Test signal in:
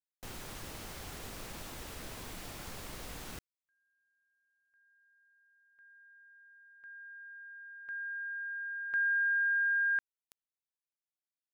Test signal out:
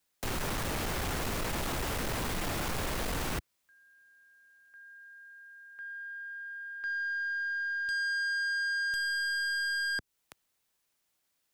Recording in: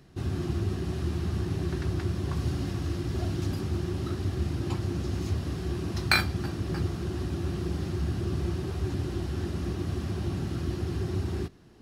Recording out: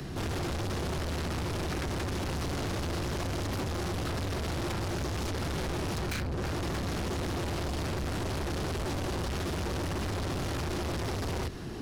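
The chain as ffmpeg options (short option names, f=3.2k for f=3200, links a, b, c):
-filter_complex "[0:a]acrossover=split=89|380|2400[a][b][c][d];[a]acompressor=threshold=-40dB:ratio=4[e];[b]acompressor=threshold=-43dB:ratio=4[f];[c]acompressor=threshold=-44dB:ratio=4[g];[d]acompressor=threshold=-53dB:ratio=4[h];[e][f][g][h]amix=inputs=4:normalize=0,aeval=exprs='(tanh(100*val(0)+0.2)-tanh(0.2))/100':c=same,aeval=exprs='0.0126*sin(PI/2*2*val(0)/0.0126)':c=same,volume=8dB"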